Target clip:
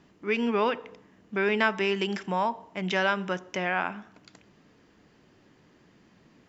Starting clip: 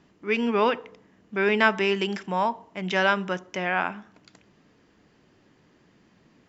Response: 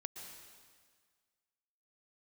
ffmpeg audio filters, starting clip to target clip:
-filter_complex "[0:a]acompressor=threshold=0.0398:ratio=1.5,asplit=2[s0][s1];[1:a]atrim=start_sample=2205,asetrate=83790,aresample=44100[s2];[s1][s2]afir=irnorm=-1:irlink=0,volume=0.224[s3];[s0][s3]amix=inputs=2:normalize=0"

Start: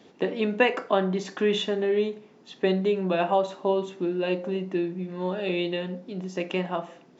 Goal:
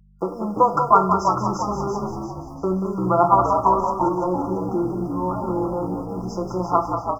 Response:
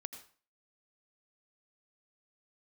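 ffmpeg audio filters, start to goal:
-filter_complex "[0:a]agate=range=0.0447:threshold=0.01:ratio=16:detection=peak,equalizer=f=125:t=o:w=1:g=-8,equalizer=f=500:t=o:w=1:g=-7,equalizer=f=1000:t=o:w=1:g=11,equalizer=f=2000:t=o:w=1:g=9,equalizer=f=4000:t=o:w=1:g=9,acrusher=bits=9:mix=0:aa=0.000001,highshelf=f=6500:g=-4.5,asplit=2[s0][s1];[s1]aecho=0:1:185:0.447[s2];[s0][s2]amix=inputs=2:normalize=0,afftfilt=real='re*(1-between(b*sr/4096,1400,4800))':imag='im*(1-between(b*sr/4096,1400,4800))':win_size=4096:overlap=0.75,aeval=exprs='val(0)+0.002*(sin(2*PI*50*n/s)+sin(2*PI*2*50*n/s)/2+sin(2*PI*3*50*n/s)/3+sin(2*PI*4*50*n/s)/4+sin(2*PI*5*50*n/s)/5)':c=same,aecho=1:1:5.9:0.94,asplit=2[s3][s4];[s4]asplit=5[s5][s6][s7][s8][s9];[s5]adelay=341,afreqshift=-62,volume=0.501[s10];[s6]adelay=682,afreqshift=-124,volume=0.226[s11];[s7]adelay=1023,afreqshift=-186,volume=0.101[s12];[s8]adelay=1364,afreqshift=-248,volume=0.0457[s13];[s9]adelay=1705,afreqshift=-310,volume=0.0207[s14];[s10][s11][s12][s13][s14]amix=inputs=5:normalize=0[s15];[s3][s15]amix=inputs=2:normalize=0,volume=1.12"

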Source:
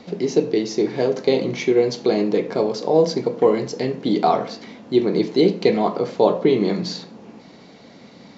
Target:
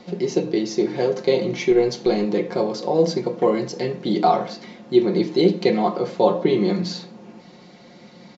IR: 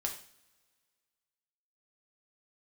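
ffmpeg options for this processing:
-filter_complex "[0:a]aecho=1:1:5.6:0.58,bandreject=f=156.8:t=h:w=4,bandreject=f=313.6:t=h:w=4,bandreject=f=470.4:t=h:w=4,bandreject=f=627.2:t=h:w=4,bandreject=f=784:t=h:w=4,bandreject=f=940.8:t=h:w=4,bandreject=f=1097.6:t=h:w=4,bandreject=f=1254.4:t=h:w=4,bandreject=f=1411.2:t=h:w=4,bandreject=f=1568:t=h:w=4,bandreject=f=1724.8:t=h:w=4,bandreject=f=1881.6:t=h:w=4,bandreject=f=2038.4:t=h:w=4,bandreject=f=2195.2:t=h:w=4,bandreject=f=2352:t=h:w=4,bandreject=f=2508.8:t=h:w=4,bandreject=f=2665.6:t=h:w=4,bandreject=f=2822.4:t=h:w=4,bandreject=f=2979.2:t=h:w=4,bandreject=f=3136:t=h:w=4,bandreject=f=3292.8:t=h:w=4,bandreject=f=3449.6:t=h:w=4,bandreject=f=3606.4:t=h:w=4,bandreject=f=3763.2:t=h:w=4,bandreject=f=3920:t=h:w=4,bandreject=f=4076.8:t=h:w=4,bandreject=f=4233.6:t=h:w=4,asettb=1/sr,asplit=3[s0][s1][s2];[s0]atrim=end=1.714[s3];[s1]atrim=start=1.71:end=2.25,asetpts=PTS-STARTPTS,afade=t=in:d=0.004:c=qsin,afade=t=out:st=0.536:d=0.004:c=qsin,aeval=exprs='0.531*(cos(1*acos(clip(val(0)/0.531,-1,1)))-cos(1*PI/2))+0.015*(cos(4*acos(clip(val(0)/0.531,-1,1)))-cos(4*PI/2))':c=same[s4];[s2]atrim=start=2.246[s5];[s3][s4]acrossfade=d=0.004:c1=hsin:c2=qsin[s6];[s6][s5]acrossfade=d=0.004:c1=qsin:c2=hsin,volume=0.794"

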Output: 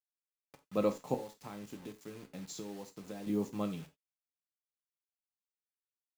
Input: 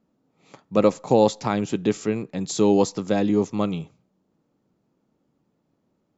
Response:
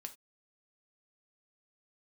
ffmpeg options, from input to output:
-filter_complex "[0:a]asettb=1/sr,asplit=3[s0][s1][s2];[s0]atrim=end=1.144[s3];[s1]atrim=start=1.14:end=3.27,asetpts=PTS-STARTPTS,afade=t=in:d=0.004:c=qsin,afade=t=out:st=2.126:d=0.004:c=qsin,acompressor=threshold=0.0355:ratio=8[s4];[s2]atrim=start=3.266[s5];[s3][s4]acrossfade=d=0.004:c1=hsin:c2=qsin[s6];[s6][s5]acrossfade=d=0.004:c1=qsin:c2=hsin,acrusher=bits=6:mix=0:aa=0.000001[s7];[1:a]atrim=start_sample=2205[s8];[s7][s8]afir=irnorm=-1:irlink=0,volume=0.376"

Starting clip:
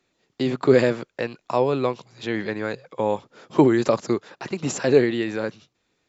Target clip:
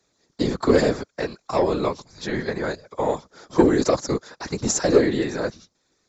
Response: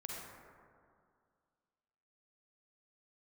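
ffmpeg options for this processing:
-af "lowpass=f=6700:w=0.5412,lowpass=f=6700:w=1.3066,equalizer=f=2800:t=o:w=0.69:g=-13,acontrast=76,afftfilt=real='hypot(re,im)*cos(2*PI*random(0))':imag='hypot(re,im)*sin(2*PI*random(1))':win_size=512:overlap=0.75,crystalizer=i=3.5:c=0"

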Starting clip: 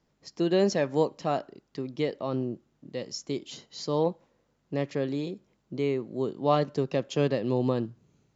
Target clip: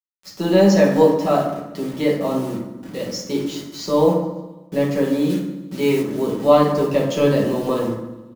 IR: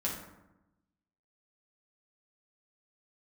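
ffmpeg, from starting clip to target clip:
-filter_complex "[0:a]acrossover=split=360[s0][s1];[s0]asoftclip=type=tanh:threshold=0.0376[s2];[s2][s1]amix=inputs=2:normalize=0,acrusher=bits=7:mix=0:aa=0.000001,aecho=1:1:137|274|411|548:0.106|0.0583|0.032|0.0176[s3];[1:a]atrim=start_sample=2205[s4];[s3][s4]afir=irnorm=-1:irlink=0,asplit=3[s5][s6][s7];[s5]afade=t=out:st=5.29:d=0.02[s8];[s6]adynamicequalizer=threshold=0.00794:dfrequency=1700:dqfactor=0.7:tfrequency=1700:tqfactor=0.7:attack=5:release=100:ratio=0.375:range=3:mode=boostabove:tftype=highshelf,afade=t=in:st=5.29:d=0.02,afade=t=out:st=6.01:d=0.02[s9];[s7]afade=t=in:st=6.01:d=0.02[s10];[s8][s9][s10]amix=inputs=3:normalize=0,volume=1.88"

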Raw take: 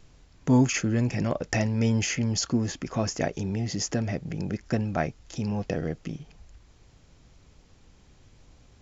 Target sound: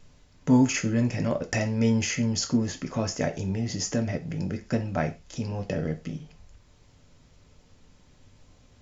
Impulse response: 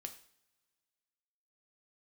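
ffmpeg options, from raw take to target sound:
-filter_complex "[1:a]atrim=start_sample=2205,afade=t=out:st=0.27:d=0.01,atrim=end_sample=12348,asetrate=70560,aresample=44100[s0];[0:a][s0]afir=irnorm=-1:irlink=0,volume=2.51"

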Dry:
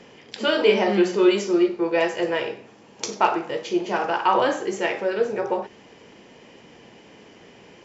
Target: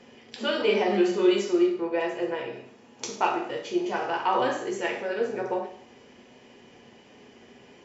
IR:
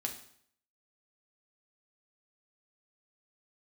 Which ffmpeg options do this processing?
-filter_complex "[0:a]asettb=1/sr,asplit=3[s0][s1][s2];[s0]atrim=end=1.814[s3];[s1]atrim=start=1.81:end=2.53,asetpts=PTS-STARTPTS,afade=t=in:d=0.004:c=qsin,afade=t=out:st=0.716:d=0.004:c=qsin,highshelf=f=2200:g=-8.5[s4];[s2]atrim=start=2.526[s5];[s3][s4]acrossfade=d=0.004:c1=hsin:c2=qsin[s6];[s6][s5]acrossfade=d=0.004:c1=qsin:c2=hsin[s7];[1:a]atrim=start_sample=2205[s8];[s7][s8]afir=irnorm=-1:irlink=0,volume=0.562"

